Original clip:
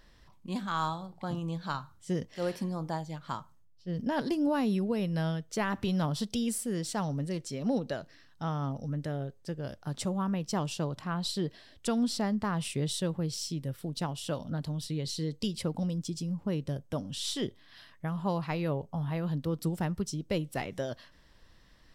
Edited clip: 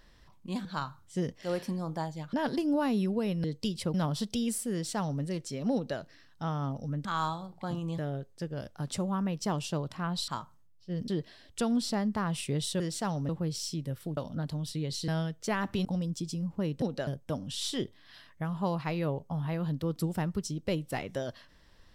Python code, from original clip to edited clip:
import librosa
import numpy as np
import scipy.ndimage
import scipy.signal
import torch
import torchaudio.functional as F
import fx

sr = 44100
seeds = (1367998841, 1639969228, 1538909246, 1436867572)

y = fx.edit(x, sr, fx.move(start_s=0.65, length_s=0.93, to_s=9.05),
    fx.move(start_s=3.26, length_s=0.8, to_s=11.35),
    fx.swap(start_s=5.17, length_s=0.77, other_s=15.23, other_length_s=0.5),
    fx.duplicate(start_s=6.73, length_s=0.49, to_s=13.07),
    fx.duplicate(start_s=7.74, length_s=0.25, to_s=16.7),
    fx.cut(start_s=13.95, length_s=0.37), tone=tone)